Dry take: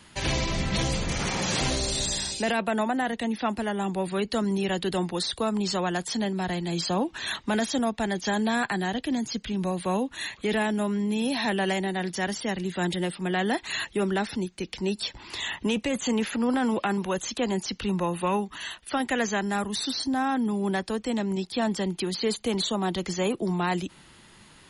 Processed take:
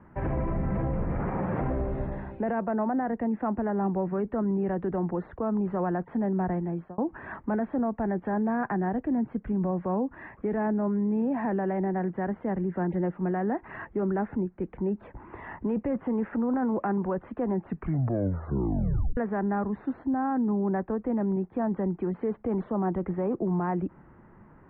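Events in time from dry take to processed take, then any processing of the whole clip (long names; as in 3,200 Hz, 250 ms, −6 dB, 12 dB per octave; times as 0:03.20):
0:06.34–0:06.98: fade out equal-power
0:17.55: tape stop 1.62 s
whole clip: Bessel low-pass filter 970 Hz, order 8; brickwall limiter −24 dBFS; level +3 dB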